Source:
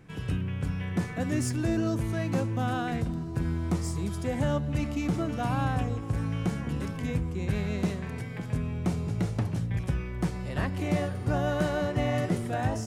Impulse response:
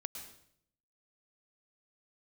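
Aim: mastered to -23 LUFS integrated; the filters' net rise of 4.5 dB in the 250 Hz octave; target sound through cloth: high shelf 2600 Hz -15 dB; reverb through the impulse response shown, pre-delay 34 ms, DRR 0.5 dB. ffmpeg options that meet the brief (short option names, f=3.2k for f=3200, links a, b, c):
-filter_complex "[0:a]equalizer=f=250:t=o:g=6.5,asplit=2[a][b];[1:a]atrim=start_sample=2205,adelay=34[c];[b][c]afir=irnorm=-1:irlink=0,volume=1.5dB[d];[a][d]amix=inputs=2:normalize=0,highshelf=f=2.6k:g=-15,volume=1.5dB"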